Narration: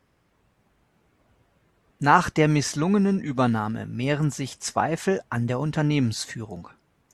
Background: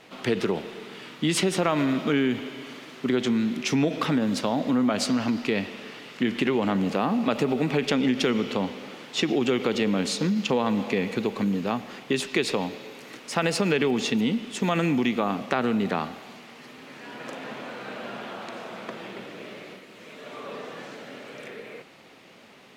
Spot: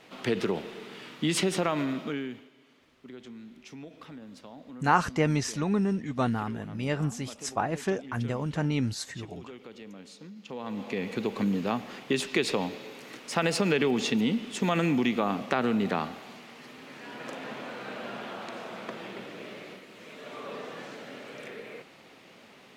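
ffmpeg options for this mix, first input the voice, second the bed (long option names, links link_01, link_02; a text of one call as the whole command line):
ffmpeg -i stem1.wav -i stem2.wav -filter_complex "[0:a]adelay=2800,volume=-5.5dB[link_01];[1:a]volume=16.5dB,afade=type=out:start_time=1.54:duration=0.95:silence=0.11885,afade=type=in:start_time=10.42:duration=1.03:silence=0.105925[link_02];[link_01][link_02]amix=inputs=2:normalize=0" out.wav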